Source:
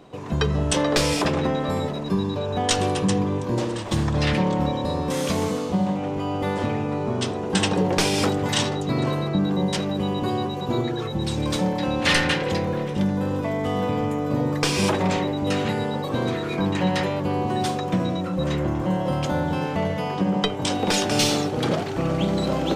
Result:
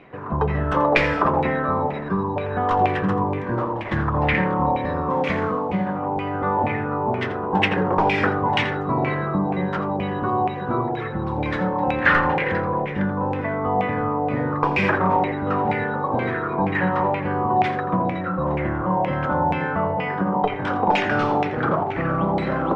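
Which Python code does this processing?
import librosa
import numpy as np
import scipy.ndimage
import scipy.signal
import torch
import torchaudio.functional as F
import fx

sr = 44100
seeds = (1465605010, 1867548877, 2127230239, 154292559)

p1 = fx.filter_lfo_lowpass(x, sr, shape='saw_down', hz=2.1, low_hz=780.0, high_hz=2400.0, q=5.6)
p2 = p1 + fx.echo_single(p1, sr, ms=84, db=-13.5, dry=0)
y = p2 * 10.0 ** (-1.0 / 20.0)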